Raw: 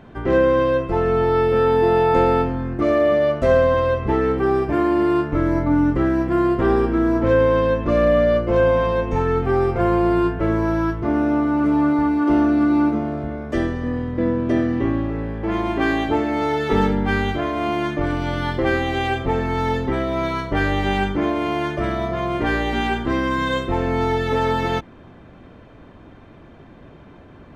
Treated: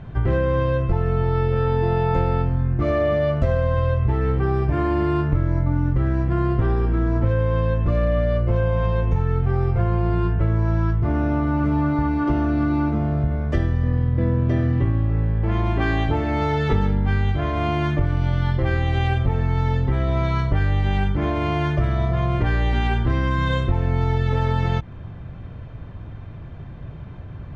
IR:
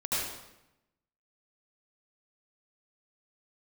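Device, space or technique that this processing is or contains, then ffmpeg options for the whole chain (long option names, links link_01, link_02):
jukebox: -af "lowpass=6100,lowshelf=frequency=180:width_type=q:width=1.5:gain=11.5,acompressor=threshold=-16dB:ratio=6"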